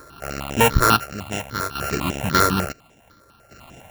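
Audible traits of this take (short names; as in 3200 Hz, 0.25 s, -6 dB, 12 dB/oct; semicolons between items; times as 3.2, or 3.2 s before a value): a buzz of ramps at a fixed pitch in blocks of 32 samples; chopped level 0.57 Hz, depth 65%, duty 55%; aliases and images of a low sample rate 8400 Hz, jitter 0%; notches that jump at a steady rate 10 Hz 770–4400 Hz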